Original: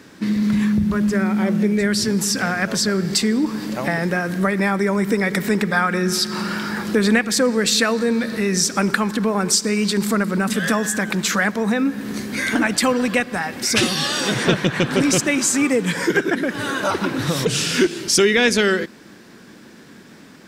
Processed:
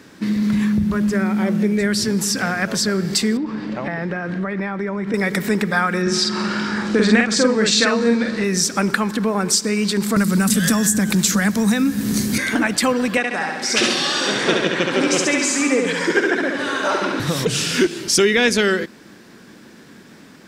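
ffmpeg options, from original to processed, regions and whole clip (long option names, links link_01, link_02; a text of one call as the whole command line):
ffmpeg -i in.wav -filter_complex "[0:a]asettb=1/sr,asplit=3[link_01][link_02][link_03];[link_01]atrim=end=3.374[link_04];[link_02]atrim=start=3.37:end=5.14,asetpts=PTS-STARTPTS,afade=type=in:duration=0.004:curve=qsin,afade=type=out:start_time=1.766:duration=0.004:curve=qsin,lowpass=3000,acompressor=threshold=-20dB:ratio=4:attack=3.2:release=140:knee=1:detection=peak[link_05];[link_03]atrim=start=5.136[link_06];[link_04][link_05]acrossfade=duration=0.004:curve1=hsin:curve2=qsin[link_07];[link_07][link_06]acrossfade=duration=0.004:curve1=qsin:curve2=hsin,asettb=1/sr,asplit=3[link_08][link_09][link_10];[link_08]atrim=end=6.024[link_11];[link_09]atrim=start=6.02:end=8.44,asetpts=PTS-STARTPTS,afade=type=in:duration=0.004:curve=qsin,afade=type=out:start_time=2.416:duration=0.004:curve=qsin,lowpass=frequency=7700:width=0.5412,lowpass=frequency=7700:width=1.3066,asplit=2[link_12][link_13];[link_13]adelay=47,volume=-2.5dB[link_14];[link_12][link_14]amix=inputs=2:normalize=0,atrim=end_sample=106722[link_15];[link_10]atrim=start=8.436[link_16];[link_11][link_15]acrossfade=duration=0.004:curve1=hsin:curve2=qsin[link_17];[link_17][link_16]acrossfade=duration=0.004:curve1=qsin:curve2=hsin,asettb=1/sr,asplit=3[link_18][link_19][link_20];[link_18]atrim=end=10.164[link_21];[link_19]atrim=start=10.16:end=12.38,asetpts=PTS-STARTPTS,afade=type=in:duration=0.004:curve=qsin,afade=type=out:start_time=2.216:duration=0.004:curve=qsin,bass=frequency=250:gain=14,treble=frequency=4000:gain=14,acrossover=split=140|380|790[link_22][link_23][link_24][link_25];[link_22]acompressor=threshold=-32dB:ratio=3[link_26];[link_23]acompressor=threshold=-18dB:ratio=3[link_27];[link_24]acompressor=threshold=-33dB:ratio=3[link_28];[link_25]acompressor=threshold=-18dB:ratio=3[link_29];[link_26][link_27][link_28][link_29]amix=inputs=4:normalize=0[link_30];[link_20]atrim=start=12.376[link_31];[link_21][link_30]acrossfade=duration=0.004:curve1=hsin:curve2=qsin[link_32];[link_32][link_31]acrossfade=duration=0.004:curve1=qsin:curve2=hsin,asettb=1/sr,asplit=3[link_33][link_34][link_35];[link_33]atrim=end=13.174[link_36];[link_34]atrim=start=13.17:end=17.2,asetpts=PTS-STARTPTS,afade=type=in:duration=0.004:curve=qsin,afade=type=out:start_time=4.026:duration=0.004:curve=qsin,highpass=270,lowpass=7000,aecho=1:1:69|138|207|276|345|414|483|552|621:0.668|0.401|0.241|0.144|0.0866|0.052|0.0312|0.0187|0.0112,atrim=end_sample=177723[link_37];[link_35]atrim=start=17.196[link_38];[link_36][link_37]acrossfade=duration=0.004:curve1=hsin:curve2=qsin[link_39];[link_39][link_38]acrossfade=duration=0.004:curve1=qsin:curve2=hsin" out.wav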